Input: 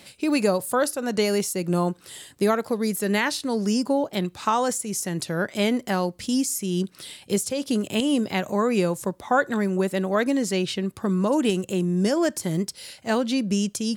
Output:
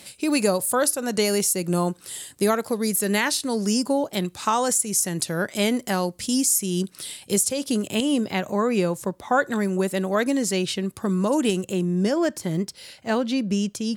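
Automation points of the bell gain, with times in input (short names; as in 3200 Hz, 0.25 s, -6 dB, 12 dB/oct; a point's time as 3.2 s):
bell 10000 Hz 1.6 oct
7.44 s +8.5 dB
8.41 s -1.5 dB
9.09 s -1.5 dB
9.56 s +6 dB
11.39 s +6 dB
12.08 s -5 dB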